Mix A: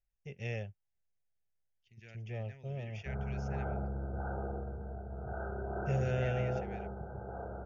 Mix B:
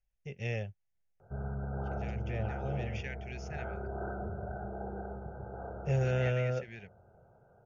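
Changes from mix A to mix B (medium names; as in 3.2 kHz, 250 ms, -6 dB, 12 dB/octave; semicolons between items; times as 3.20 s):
first voice +3.0 dB; second voice +6.0 dB; background: entry -1.75 s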